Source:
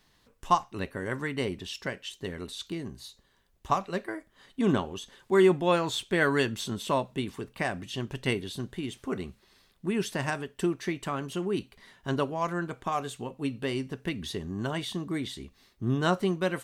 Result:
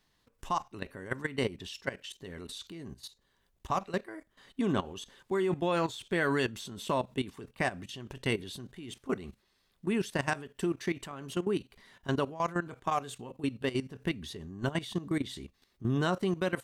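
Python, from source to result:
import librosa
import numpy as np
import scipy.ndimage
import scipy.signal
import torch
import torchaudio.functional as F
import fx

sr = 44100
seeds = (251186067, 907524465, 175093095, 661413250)

y = fx.low_shelf(x, sr, hz=240.0, db=2.5, at=(13.9, 15.37))
y = fx.level_steps(y, sr, step_db=15)
y = y * 10.0 ** (2.0 / 20.0)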